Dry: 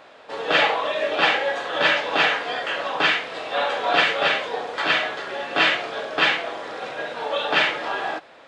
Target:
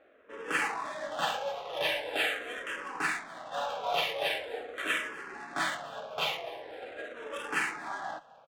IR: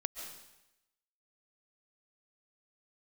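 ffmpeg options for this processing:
-filter_complex "[0:a]adynamicsmooth=sensitivity=4:basefreq=1500,aecho=1:1:254|508:0.0891|0.0267,asplit=2[link_01][link_02];[link_02]afreqshift=-0.43[link_03];[link_01][link_03]amix=inputs=2:normalize=1,volume=-8.5dB"

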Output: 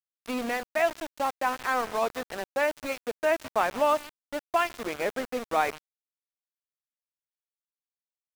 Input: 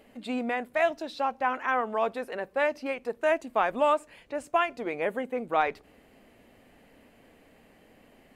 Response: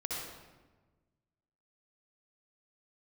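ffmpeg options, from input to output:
-af "aecho=1:1:146|292|438:0.141|0.0494|0.0173,aeval=exprs='val(0)*gte(abs(val(0)),0.0251)':channel_layout=same"

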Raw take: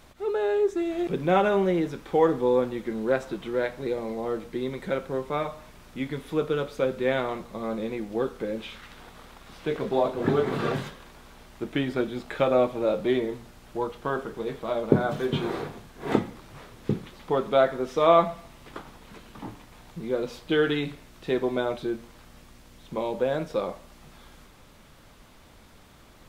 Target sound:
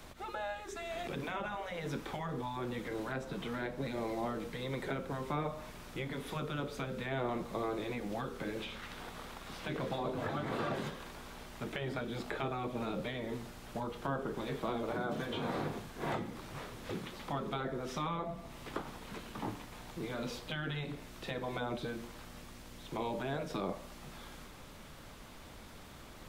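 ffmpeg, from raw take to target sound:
ffmpeg -i in.wav -filter_complex "[0:a]acrossover=split=110|430|990[link_01][link_02][link_03][link_04];[link_01]acompressor=threshold=-53dB:ratio=4[link_05];[link_02]acompressor=threshold=-31dB:ratio=4[link_06];[link_03]acompressor=threshold=-39dB:ratio=4[link_07];[link_04]acompressor=threshold=-45dB:ratio=4[link_08];[link_05][link_06][link_07][link_08]amix=inputs=4:normalize=0,afftfilt=real='re*lt(hypot(re,im),0.126)':imag='im*lt(hypot(re,im),0.126)':win_size=1024:overlap=0.75,volume=1.5dB" out.wav

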